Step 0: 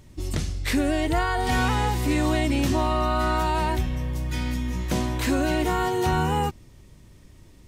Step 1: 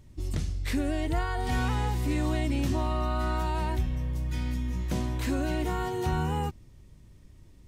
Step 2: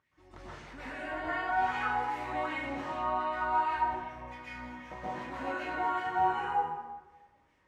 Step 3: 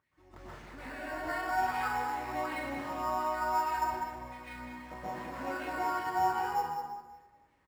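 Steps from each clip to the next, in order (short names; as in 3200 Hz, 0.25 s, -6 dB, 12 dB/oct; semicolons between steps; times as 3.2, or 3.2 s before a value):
low shelf 210 Hz +7 dB; gain -8.5 dB
wah 2.6 Hz 730–2100 Hz, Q 2.7; plate-style reverb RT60 1.2 s, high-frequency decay 0.65×, pre-delay 0.11 s, DRR -9.5 dB; gain -2 dB
in parallel at -9 dB: sample-rate reducer 6200 Hz, jitter 0%; on the sum: echo 0.197 s -8 dB; gain -4 dB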